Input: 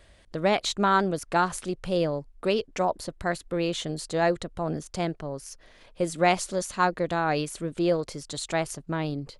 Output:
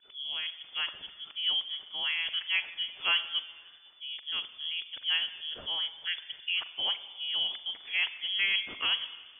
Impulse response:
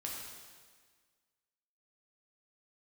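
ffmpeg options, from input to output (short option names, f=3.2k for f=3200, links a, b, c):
-filter_complex "[0:a]areverse,asplit=2[a][b];[1:a]atrim=start_sample=2205,adelay=41[c];[b][c]afir=irnorm=-1:irlink=0,volume=-11.5dB[d];[a][d]amix=inputs=2:normalize=0,lowpass=f=3k:t=q:w=0.5098,lowpass=f=3k:t=q:w=0.6013,lowpass=f=3k:t=q:w=0.9,lowpass=f=3k:t=q:w=2.563,afreqshift=-3500,volume=-6.5dB"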